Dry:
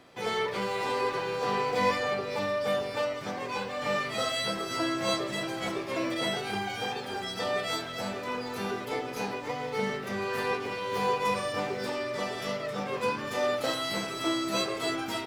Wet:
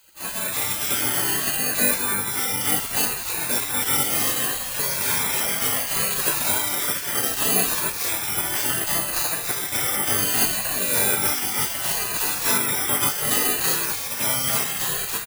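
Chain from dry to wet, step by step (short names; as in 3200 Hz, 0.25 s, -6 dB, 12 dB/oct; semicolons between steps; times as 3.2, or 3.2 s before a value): moving spectral ripple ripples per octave 1.5, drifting -0.67 Hz, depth 18 dB; in parallel at -1 dB: limiter -21 dBFS, peak gain reduction 10 dB; on the sum: tone controls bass +3 dB, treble +1 dB; notch 2200 Hz, Q 23; doubler 37 ms -8 dB; AGC; careless resampling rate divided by 4×, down none, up zero stuff; bell 1700 Hz +6.5 dB 1.1 oct; spectral gate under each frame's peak -15 dB weak; gain -6 dB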